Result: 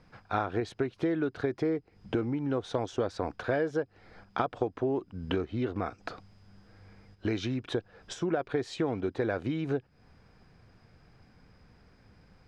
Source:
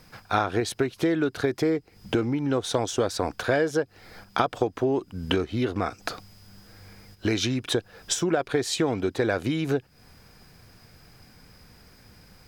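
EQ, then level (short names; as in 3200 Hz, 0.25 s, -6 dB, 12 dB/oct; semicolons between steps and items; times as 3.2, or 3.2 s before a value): air absorption 71 m; high shelf 3100 Hz -9.5 dB; -5.0 dB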